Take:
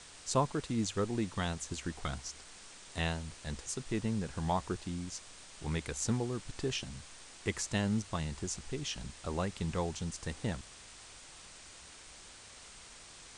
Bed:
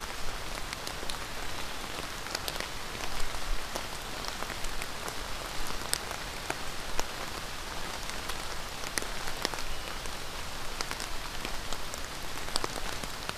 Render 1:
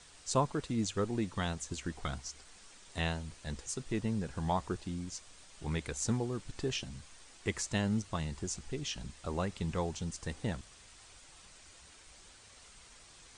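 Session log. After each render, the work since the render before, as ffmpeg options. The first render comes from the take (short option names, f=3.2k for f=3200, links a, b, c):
-af "afftdn=nr=6:nf=-53"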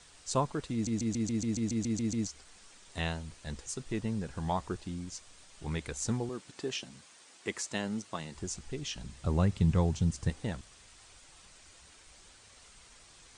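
-filter_complex "[0:a]asettb=1/sr,asplit=3[a][b][c];[a]atrim=end=6.294[d];[b]atrim=start=6.29:end=8.35,asetpts=PTS-STARTPTS,afade=t=in:d=0.004:c=qsin,afade=t=out:st=2.056:d=0.004:c=qsin,highpass=210[e];[c]atrim=start=8.346[f];[d][e]acrossfade=d=0.004:c1=hsin:c2=qsin[g];[g][f]acrossfade=d=0.004:c1=qsin:c2=hsin,asettb=1/sr,asplit=3[h][i][j];[h]atrim=end=9.114[k];[i]atrim=start=9.11:end=10.3,asetpts=PTS-STARTPTS,afade=t=in:d=0.004:c=qsin,afade=t=out:st=1.186:d=0.004:c=qsin,equalizer=f=110:t=o:w=2.2:g=13[l];[j]atrim=start=10.296[m];[k][l]acrossfade=d=0.004:c1=hsin:c2=qsin[n];[n][m]acrossfade=d=0.004:c1=qsin:c2=hsin,asplit=12[o][p][q][r][s][t][u][v][w][x][y][z];[o]atrim=end=0.872[aa];[p]atrim=start=0.728:end=0.872[ab];[q]atrim=start=0.728:end=0.872[ac];[r]atrim=start=0.728:end=0.872[ad];[s]atrim=start=0.728:end=0.872[ae];[t]atrim=start=0.728:end=0.872[af];[u]atrim=start=0.728:end=0.872[ag];[v]atrim=start=0.728:end=0.872[ah];[w]atrim=start=0.728:end=0.872[ai];[x]atrim=start=0.728:end=0.872[aj];[y]atrim=start=0.728:end=0.872[ak];[z]atrim=start=2.268[al];[aa][ab]acrossfade=d=0.004:c1=hsin:c2=hsin[am];[am][ac]acrossfade=d=0.004:c1=hsin:c2=hsin[an];[an][ad]acrossfade=d=0.004:c1=hsin:c2=hsin[ao];[ao][ae]acrossfade=d=0.004:c1=hsin:c2=hsin[ap];[ap][af]acrossfade=d=0.004:c1=hsin:c2=hsin[aq];[aq][ag]acrossfade=d=0.004:c1=hsin:c2=hsin[ar];[ar][ah]acrossfade=d=0.004:c1=hsin:c2=hsin[as];[as][ai]acrossfade=d=0.004:c1=hsin:c2=hsin[at];[at][aj]acrossfade=d=0.004:c1=hsin:c2=hsin[au];[au][ak]acrossfade=d=0.004:c1=hsin:c2=hsin[av];[av][al]acrossfade=d=0.004:c1=hsin:c2=hsin"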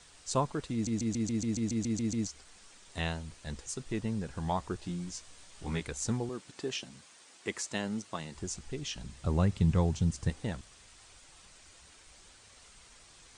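-filter_complex "[0:a]asettb=1/sr,asplit=3[a][b][c];[a]atrim=end=4.804[d];[b]atrim=start=4.8:end=5.83,asetpts=PTS-STARTPTS,afade=t=in:d=0.004:c=qsin,afade=t=out:st=1.026:d=0.004:c=qsin,asplit=2[e][f];[f]adelay=17,volume=-3.5dB[g];[e][g]amix=inputs=2:normalize=0,atrim=end_sample=45423[h];[c]atrim=start=5.826[i];[d][h]acrossfade=d=0.004:c1=hsin:c2=qsin[j];[j][i]acrossfade=d=0.004:c1=qsin:c2=hsin"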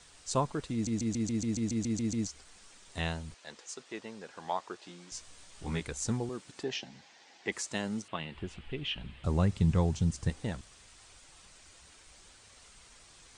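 -filter_complex "[0:a]asettb=1/sr,asplit=3[a][b][c];[a]atrim=end=3.344[d];[b]atrim=start=3.34:end=5.12,asetpts=PTS-STARTPTS,afade=t=in:d=0.004:c=qsin,afade=t=out:st=1.776:d=0.004:c=qsin,highpass=460,lowpass=6.4k[e];[c]atrim=start=5.116[f];[d][e]acrossfade=d=0.004:c1=hsin:c2=qsin[g];[g][f]acrossfade=d=0.004:c1=qsin:c2=hsin,asettb=1/sr,asplit=3[h][i][j];[h]atrim=end=6.634[k];[i]atrim=start=6.63:end=7.52,asetpts=PTS-STARTPTS,afade=t=in:d=0.004:c=qsin,afade=t=out:st=0.886:d=0.004:c=qsin,highpass=100,equalizer=f=800:t=q:w=4:g=9,equalizer=f=1.2k:t=q:w=4:g=-7,equalizer=f=1.9k:t=q:w=4:g=5,lowpass=f=5.9k:w=0.5412,lowpass=f=5.9k:w=1.3066[l];[j]atrim=start=7.516[m];[k][l]acrossfade=d=0.004:c1=hsin:c2=qsin[n];[n][m]acrossfade=d=0.004:c1=qsin:c2=hsin,asettb=1/sr,asplit=3[o][p][q];[o]atrim=end=8.084[r];[p]atrim=start=8.08:end=9.24,asetpts=PTS-STARTPTS,afade=t=in:d=0.004:c=qsin,afade=t=out:st=1.156:d=0.004:c=qsin,highshelf=f=4.3k:t=q:w=3:g=-13.5[s];[q]atrim=start=9.236[t];[r][s]acrossfade=d=0.004:c1=hsin:c2=qsin[u];[u][t]acrossfade=d=0.004:c1=qsin:c2=hsin"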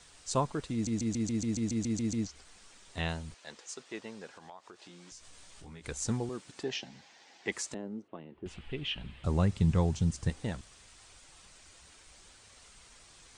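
-filter_complex "[0:a]asettb=1/sr,asplit=3[a][b][c];[a]atrim=end=2.184[d];[b]atrim=start=2.18:end=3.09,asetpts=PTS-STARTPTS,afade=t=in:d=0.004:c=qsin,afade=t=out:st=0.906:d=0.004:c=qsin,acrossover=split=5500[e][f];[f]acompressor=threshold=-58dB:ratio=4:attack=1:release=60[g];[e][g]amix=inputs=2:normalize=0[h];[c]atrim=start=3.086[i];[d][h]acrossfade=d=0.004:c1=hsin:c2=qsin[j];[j][i]acrossfade=d=0.004:c1=qsin:c2=hsin,asplit=3[k][l][m];[k]afade=t=out:st=4.3:d=0.02[n];[l]acompressor=threshold=-48dB:ratio=4:attack=3.2:release=140:knee=1:detection=peak,afade=t=in:st=4.3:d=0.02,afade=t=out:st=5.83:d=0.02[o];[m]afade=t=in:st=5.83:d=0.02[p];[n][o][p]amix=inputs=3:normalize=0,asettb=1/sr,asplit=3[q][r][s];[q]atrim=end=7.744[t];[r]atrim=start=7.74:end=8.46,asetpts=PTS-STARTPTS,afade=t=in:d=0.004:c=qsin,afade=t=out:st=0.716:d=0.004:c=qsin,bandpass=f=350:t=q:w=1.5[u];[s]atrim=start=8.456[v];[t][u]acrossfade=d=0.004:c1=hsin:c2=qsin[w];[w][v]acrossfade=d=0.004:c1=qsin:c2=hsin"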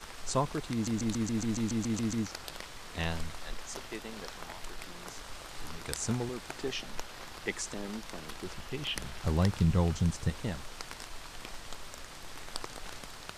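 -filter_complex "[1:a]volume=-8.5dB[a];[0:a][a]amix=inputs=2:normalize=0"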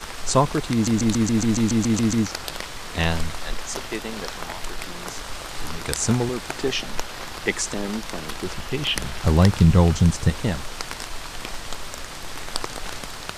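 -af "volume=11.5dB,alimiter=limit=-2dB:level=0:latency=1"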